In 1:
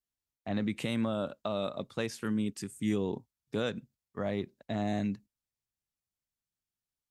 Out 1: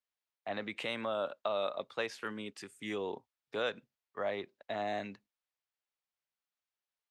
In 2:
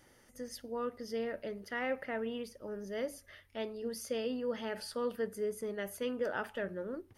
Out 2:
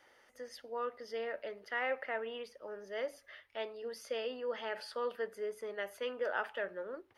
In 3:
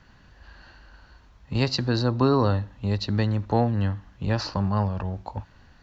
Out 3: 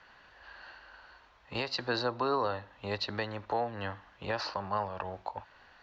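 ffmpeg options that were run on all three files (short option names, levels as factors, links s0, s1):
-filter_complex "[0:a]acrossover=split=440 4400:gain=0.1 1 0.2[s0][s1][s2];[s0][s1][s2]amix=inputs=3:normalize=0,alimiter=limit=0.0708:level=0:latency=1:release=346,volume=1.33"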